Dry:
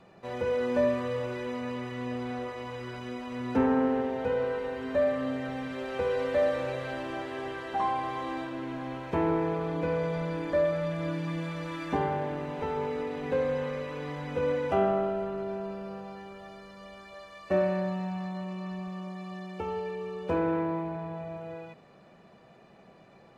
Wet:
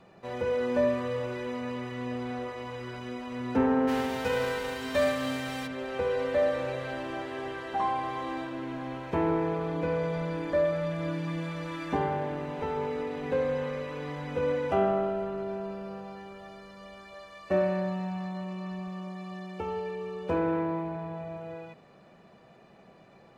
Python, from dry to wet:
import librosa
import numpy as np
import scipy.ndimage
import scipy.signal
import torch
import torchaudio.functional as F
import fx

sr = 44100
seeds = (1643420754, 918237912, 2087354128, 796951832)

y = fx.envelope_flatten(x, sr, power=0.6, at=(3.87, 5.66), fade=0.02)